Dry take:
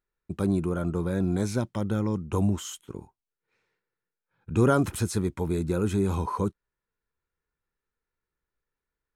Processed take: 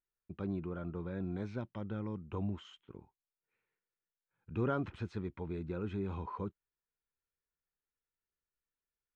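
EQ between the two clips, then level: four-pole ladder low-pass 3.7 kHz, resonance 25%; -6.5 dB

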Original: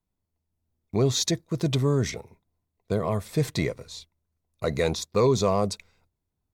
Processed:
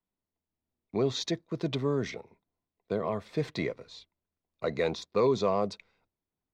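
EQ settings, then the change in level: three-band isolator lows -17 dB, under 180 Hz, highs -23 dB, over 4.8 kHz; bass shelf 76 Hz +8.5 dB; -3.5 dB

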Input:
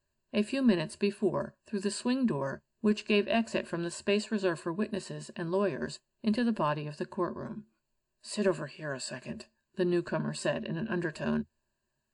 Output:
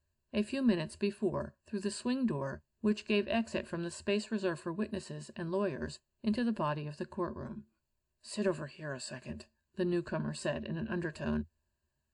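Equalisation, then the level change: peaking EQ 69 Hz +15 dB 1 oct; -4.5 dB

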